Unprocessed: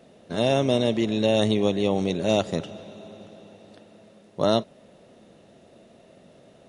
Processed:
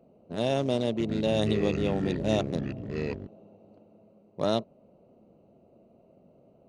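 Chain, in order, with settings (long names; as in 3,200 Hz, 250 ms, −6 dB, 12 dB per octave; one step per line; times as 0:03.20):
adaptive Wiener filter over 25 samples
0:00.90–0:03.27: delay with pitch and tempo change per echo 97 ms, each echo −6 semitones, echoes 2, each echo −6 dB
level −5 dB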